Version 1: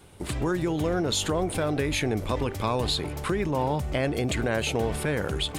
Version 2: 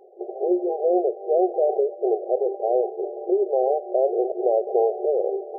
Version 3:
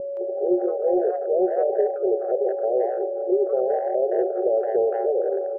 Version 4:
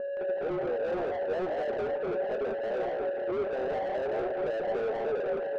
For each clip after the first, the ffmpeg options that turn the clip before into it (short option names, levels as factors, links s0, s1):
-af "afftfilt=real='re*between(b*sr/4096,350,810)':imag='im*between(b*sr/4096,350,810)':win_size=4096:overlap=0.75,volume=2.82"
-filter_complex "[0:a]aeval=exprs='val(0)+0.0562*sin(2*PI*560*n/s)':c=same,acontrast=40,acrossover=split=690[s0][s1];[s1]adelay=170[s2];[s0][s2]amix=inputs=2:normalize=0,volume=0.596"
-filter_complex "[0:a]flanger=delay=7.9:depth=7.7:regen=84:speed=1.4:shape=triangular,asplit=2[s0][s1];[s1]highpass=f=720:p=1,volume=22.4,asoftclip=type=tanh:threshold=0.2[s2];[s0][s2]amix=inputs=2:normalize=0,lowpass=f=1200:p=1,volume=0.501,flanger=delay=4.5:depth=6:regen=62:speed=0.4:shape=sinusoidal,volume=0.531"